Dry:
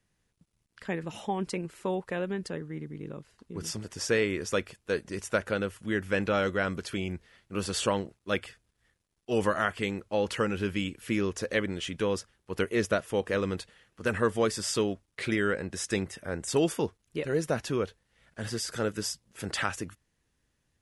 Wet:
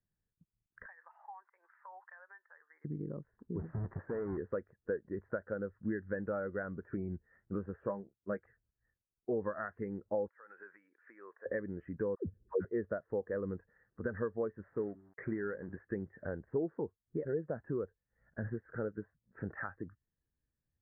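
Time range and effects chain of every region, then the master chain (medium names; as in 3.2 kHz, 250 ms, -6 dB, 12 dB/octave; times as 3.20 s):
0.86–2.85 s: high-pass 900 Hz 24 dB/octave + compression 10:1, threshold -48 dBFS
3.59–4.38 s: square wave that keeps the level + compression 4:1, threshold -34 dBFS
7.76–8.43 s: doubling 15 ms -8.5 dB + upward expansion, over -34 dBFS
10.28–11.46 s: high-pass 880 Hz + compression 4:1, threshold -47 dBFS
12.15–12.65 s: low-pass 2.2 kHz + resonant low shelf 600 Hz +9.5 dB, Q 1.5 + phase dispersion lows, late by 118 ms, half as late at 460 Hz
14.67–15.78 s: de-hum 96.33 Hz, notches 4 + companded quantiser 4-bit
whole clip: compression 5:1, threshold -41 dBFS; elliptic low-pass 1.8 kHz, stop band 60 dB; spectral contrast expander 1.5:1; trim +5.5 dB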